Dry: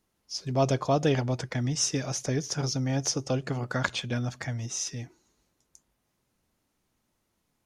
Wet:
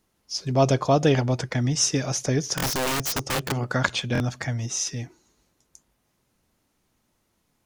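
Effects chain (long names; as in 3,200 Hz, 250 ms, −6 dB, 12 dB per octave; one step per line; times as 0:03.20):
0:02.56–0:03.52: wrap-around overflow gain 25.5 dB
buffer that repeats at 0:02.56/0:04.13, samples 1,024, times 2
level +5 dB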